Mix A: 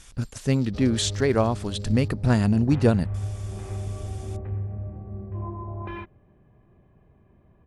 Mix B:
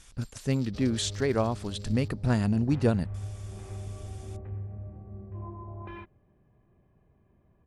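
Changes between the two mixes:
speech −5.0 dB
second sound −7.0 dB

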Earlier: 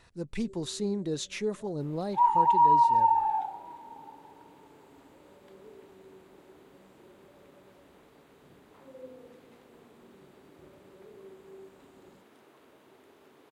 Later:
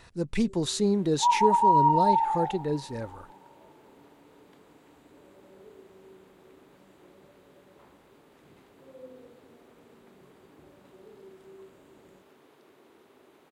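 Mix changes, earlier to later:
speech +6.5 dB
second sound: entry −0.95 s

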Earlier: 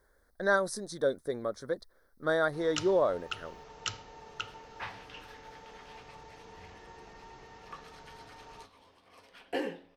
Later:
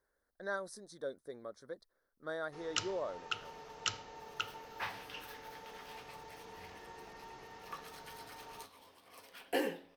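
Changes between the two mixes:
speech −12.0 dB
second sound: remove high-frequency loss of the air 66 metres
master: add low-shelf EQ 110 Hz −9 dB

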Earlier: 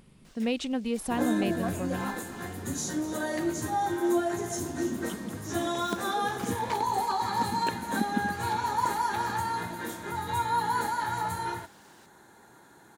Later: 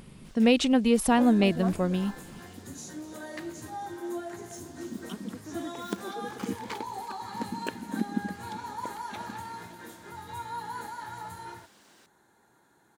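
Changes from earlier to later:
speech +8.0 dB
second sound −9.5 dB

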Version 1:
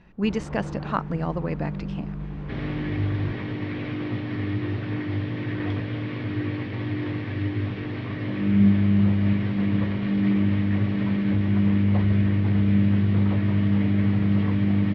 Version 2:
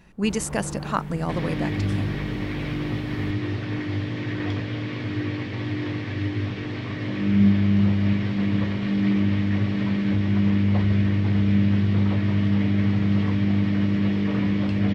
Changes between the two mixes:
second sound: entry −1.20 s
master: remove high-frequency loss of the air 210 metres

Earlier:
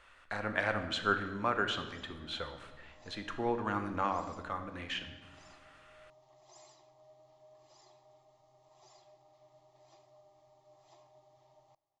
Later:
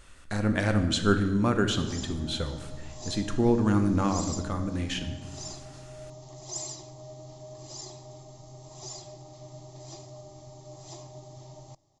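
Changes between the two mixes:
background +10.5 dB
master: remove three-way crossover with the lows and the highs turned down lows −17 dB, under 550 Hz, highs −18 dB, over 3,300 Hz

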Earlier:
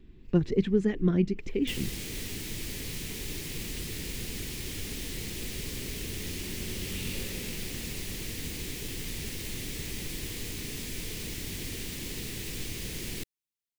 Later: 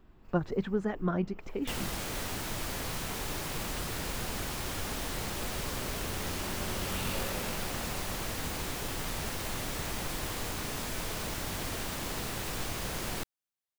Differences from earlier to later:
speech −6.5 dB
first sound: add high-shelf EQ 11,000 Hz +7.5 dB
master: add flat-topped bell 930 Hz +15.5 dB

